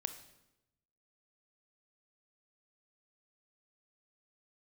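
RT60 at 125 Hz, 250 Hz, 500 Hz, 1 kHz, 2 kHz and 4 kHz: 1.3 s, 1.1 s, 1.0 s, 0.85 s, 0.80 s, 0.75 s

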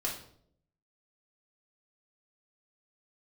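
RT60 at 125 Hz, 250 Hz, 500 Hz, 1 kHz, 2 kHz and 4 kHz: 0.95 s, 0.85 s, 0.75 s, 0.55 s, 0.45 s, 0.45 s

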